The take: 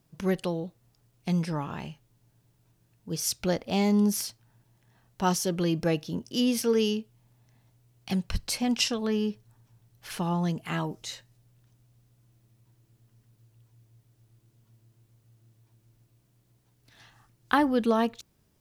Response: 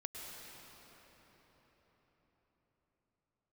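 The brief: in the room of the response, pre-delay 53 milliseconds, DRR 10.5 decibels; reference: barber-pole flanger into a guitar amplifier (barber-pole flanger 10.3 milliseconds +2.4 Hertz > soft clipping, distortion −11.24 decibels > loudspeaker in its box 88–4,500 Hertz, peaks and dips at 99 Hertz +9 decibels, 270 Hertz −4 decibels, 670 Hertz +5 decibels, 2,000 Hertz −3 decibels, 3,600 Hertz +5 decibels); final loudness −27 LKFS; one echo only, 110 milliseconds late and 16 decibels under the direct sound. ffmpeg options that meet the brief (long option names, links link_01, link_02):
-filter_complex "[0:a]aecho=1:1:110:0.158,asplit=2[link_01][link_02];[1:a]atrim=start_sample=2205,adelay=53[link_03];[link_02][link_03]afir=irnorm=-1:irlink=0,volume=-9.5dB[link_04];[link_01][link_04]amix=inputs=2:normalize=0,asplit=2[link_05][link_06];[link_06]adelay=10.3,afreqshift=2.4[link_07];[link_05][link_07]amix=inputs=2:normalize=1,asoftclip=threshold=-25dB,highpass=88,equalizer=frequency=99:width_type=q:width=4:gain=9,equalizer=frequency=270:width_type=q:width=4:gain=-4,equalizer=frequency=670:width_type=q:width=4:gain=5,equalizer=frequency=2000:width_type=q:width=4:gain=-3,equalizer=frequency=3600:width_type=q:width=4:gain=5,lowpass=frequency=4500:width=0.5412,lowpass=frequency=4500:width=1.3066,volume=8dB"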